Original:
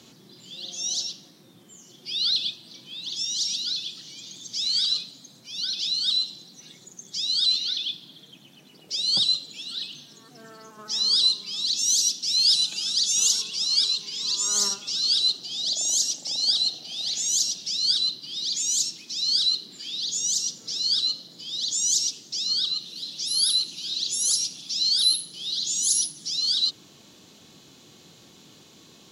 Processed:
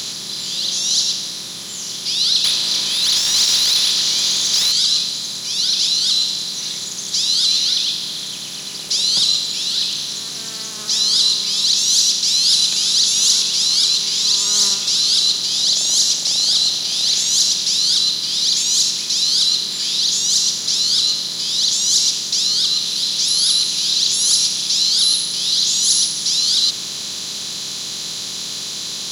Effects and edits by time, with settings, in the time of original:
2.44–4.72 s: overdrive pedal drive 23 dB, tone 3.9 kHz, clips at -15 dBFS
whole clip: spectral levelling over time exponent 0.4

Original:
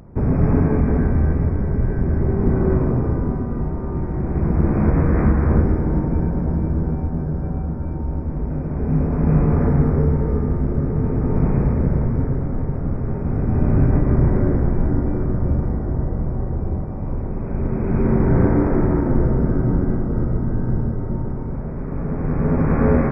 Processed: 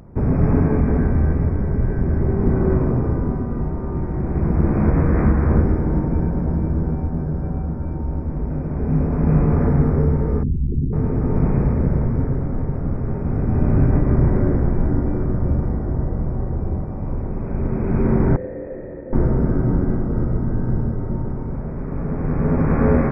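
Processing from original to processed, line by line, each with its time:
10.43–10.93 s: resonances exaggerated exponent 3
18.36–19.13 s: cascade formant filter e

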